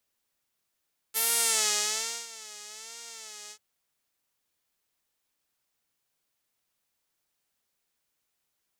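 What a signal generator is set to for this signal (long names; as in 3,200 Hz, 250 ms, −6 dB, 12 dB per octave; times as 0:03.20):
subtractive patch with vibrato A4, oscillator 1 saw, interval +7 semitones, oscillator 2 level −10 dB, sub −13 dB, filter bandpass, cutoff 6,800 Hz, Q 1.9, filter envelope 1 octave, filter decay 0.52 s, filter sustain 0%, attack 29 ms, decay 1.10 s, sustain −23 dB, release 0.07 s, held 2.37 s, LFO 1.2 Hz, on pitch 95 cents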